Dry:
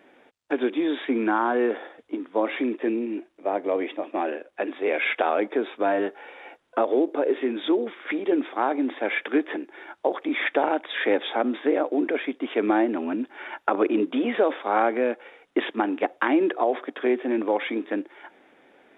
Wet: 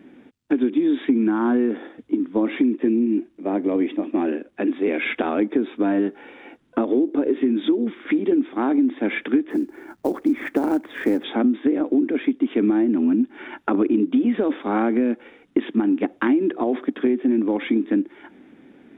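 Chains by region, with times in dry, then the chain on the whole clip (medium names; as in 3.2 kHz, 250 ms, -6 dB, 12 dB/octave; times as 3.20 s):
9.50–11.24 s: low-pass 1.8 kHz + companded quantiser 6-bit
whole clip: resonant low shelf 380 Hz +14 dB, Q 1.5; compression 6:1, threshold -16 dBFS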